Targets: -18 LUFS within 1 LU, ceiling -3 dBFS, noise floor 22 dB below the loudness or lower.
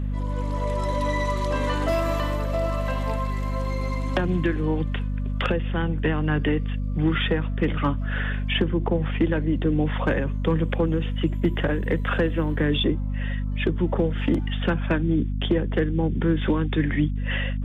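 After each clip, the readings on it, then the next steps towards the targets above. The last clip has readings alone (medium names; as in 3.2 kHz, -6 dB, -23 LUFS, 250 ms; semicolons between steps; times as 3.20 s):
hum 50 Hz; highest harmonic 250 Hz; hum level -24 dBFS; loudness -25.0 LUFS; peak level -10.0 dBFS; loudness target -18.0 LUFS
-> hum notches 50/100/150/200/250 Hz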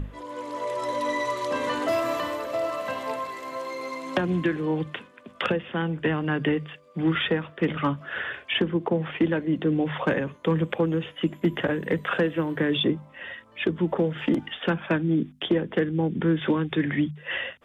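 hum not found; loudness -26.5 LUFS; peak level -12.0 dBFS; loudness target -18.0 LUFS
-> trim +8.5 dB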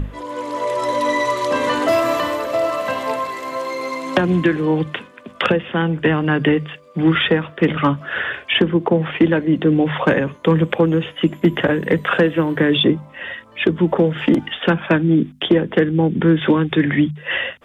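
loudness -18.0 LUFS; peak level -3.5 dBFS; noise floor -44 dBFS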